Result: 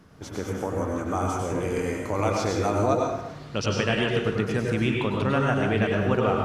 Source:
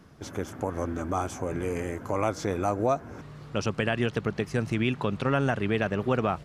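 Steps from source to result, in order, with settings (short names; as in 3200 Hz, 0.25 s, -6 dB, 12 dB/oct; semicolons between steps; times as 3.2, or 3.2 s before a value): 1.46–4.06 bell 4300 Hz +6.5 dB 1 oct; plate-style reverb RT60 0.79 s, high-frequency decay 0.75×, pre-delay 85 ms, DRR -0.5 dB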